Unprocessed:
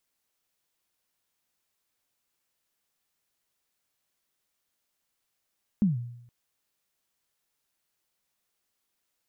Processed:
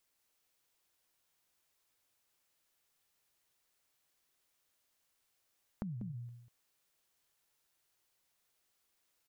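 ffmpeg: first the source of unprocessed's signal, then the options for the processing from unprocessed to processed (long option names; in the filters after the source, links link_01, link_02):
-f lavfi -i "aevalsrc='0.141*pow(10,-3*t/0.78)*sin(2*PI*(220*0.149/log(120/220)*(exp(log(120/220)*min(t,0.149)/0.149)-1)+120*max(t-0.149,0)))':duration=0.47:sample_rate=44100"
-filter_complex "[0:a]equalizer=frequency=210:width=2.6:gain=-5,asplit=2[link_01][link_02];[link_02]aecho=0:1:193:0.501[link_03];[link_01][link_03]amix=inputs=2:normalize=0,acompressor=threshold=-39dB:ratio=12"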